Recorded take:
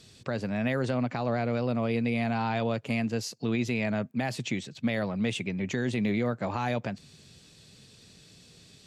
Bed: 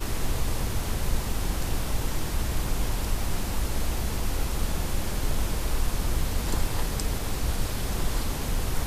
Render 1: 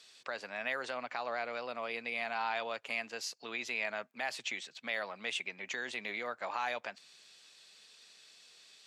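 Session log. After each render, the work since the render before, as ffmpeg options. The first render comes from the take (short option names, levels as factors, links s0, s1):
-af "highpass=920,highshelf=f=6800:g=-7.5"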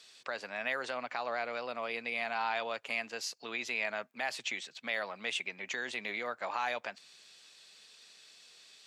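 -af "volume=1.19"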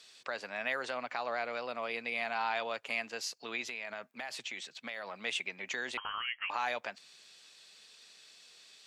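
-filter_complex "[0:a]asettb=1/sr,asplit=3[s0][s1][s2];[s0]atrim=end=3.614[s3];[s1]atrim=start=3.61:end=5.25,asetpts=PTS-STARTPTS,afade=t=in:d=0.004:c=qsin,afade=t=out:st=1.636:d=0.004:c=qsin,acompressor=threshold=0.0158:ratio=6:attack=3.2:release=140:knee=1:detection=peak[s4];[s2]atrim=start=5.246[s5];[s3][s4]acrossfade=d=0.004:c1=hsin:c2=qsin[s6];[s6][s5]acrossfade=d=0.004:c1=qsin:c2=hsin,asettb=1/sr,asplit=3[s7][s8][s9];[s7]atrim=end=5.974[s10];[s8]atrim=start=5.97:end=6.5,asetpts=PTS-STARTPTS,afade=t=in:d=0.004:c=qsin,afade=t=out:st=0.526:d=0.004:c=qsin,lowpass=f=2900:t=q:w=0.5098,lowpass=f=2900:t=q:w=0.6013,lowpass=f=2900:t=q:w=0.9,lowpass=f=2900:t=q:w=2.563,afreqshift=-3400[s11];[s9]atrim=start=6.496[s12];[s10][s11]acrossfade=d=0.004:c1=hsin:c2=qsin[s13];[s13][s12]acrossfade=d=0.004:c1=qsin:c2=hsin"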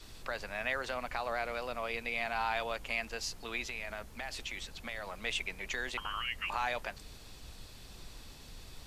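-filter_complex "[1:a]volume=0.0668[s0];[0:a][s0]amix=inputs=2:normalize=0"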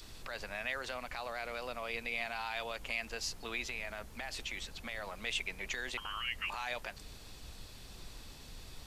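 -filter_complex "[0:a]acrossover=split=2200[s0][s1];[s0]alimiter=level_in=2.51:limit=0.0631:level=0:latency=1:release=111,volume=0.398[s2];[s1]acompressor=mode=upward:threshold=0.00178:ratio=2.5[s3];[s2][s3]amix=inputs=2:normalize=0"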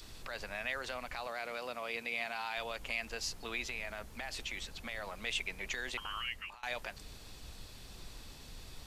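-filter_complex "[0:a]asettb=1/sr,asplit=3[s0][s1][s2];[s0]atrim=end=1.274[s3];[s1]atrim=start=1.27:end=2.58,asetpts=PTS-STARTPTS,afade=t=in:d=0.004:c=qsin,afade=t=out:st=1.306:d=0.004:c=qsin,highpass=140[s4];[s2]atrim=start=2.576[s5];[s3][s4]acrossfade=d=0.004:c1=hsin:c2=qsin[s6];[s6][s5]acrossfade=d=0.004:c1=qsin:c2=hsin,asplit=2[s7][s8];[s7]atrim=end=6.63,asetpts=PTS-STARTPTS,afade=t=out:st=6.2:d=0.43:silence=0.0707946[s9];[s8]atrim=start=6.63,asetpts=PTS-STARTPTS,afade=t=in:d=0.004:c=hsin:silence=0.0707946[s10];[s9][s10]concat=n=2:v=0:a=1"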